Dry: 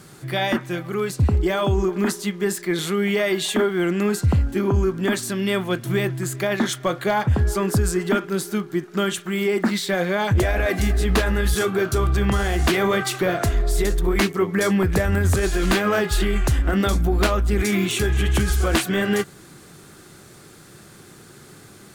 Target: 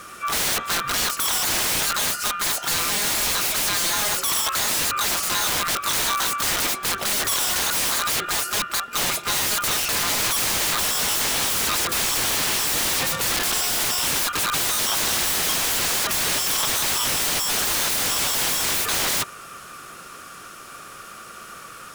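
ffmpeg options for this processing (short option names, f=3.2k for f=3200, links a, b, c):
-filter_complex "[0:a]afftfilt=real='real(if(lt(b,960),b+48*(1-2*mod(floor(b/48),2)),b),0)':imag='imag(if(lt(b,960),b+48*(1-2*mod(floor(b/48),2)),b),0)':win_size=2048:overlap=0.75,aeval=exprs='(mod(14.1*val(0)+1,2)-1)/14.1':c=same,asplit=3[a][b][c];[b]asetrate=55563,aresample=44100,atempo=0.793701,volume=-15dB[d];[c]asetrate=88200,aresample=44100,atempo=0.5,volume=-12dB[e];[a][d][e]amix=inputs=3:normalize=0,volume=5dB"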